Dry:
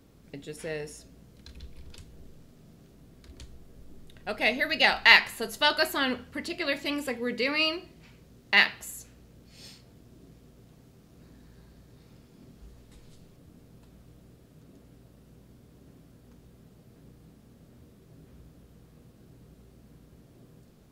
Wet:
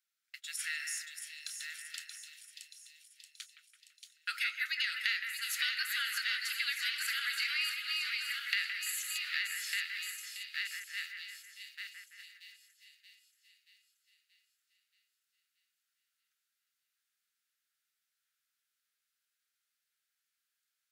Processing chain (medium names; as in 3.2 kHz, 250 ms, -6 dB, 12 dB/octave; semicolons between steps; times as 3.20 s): backward echo that repeats 600 ms, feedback 53%, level -9 dB; steep high-pass 1.3 kHz 96 dB/octave; gate -53 dBFS, range -25 dB; treble shelf 3.4 kHz +5 dB; compression 8:1, threshold -37 dBFS, peak gain reduction 25 dB; two-band feedback delay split 2.6 kHz, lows 167 ms, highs 629 ms, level -6 dB; trim +4.5 dB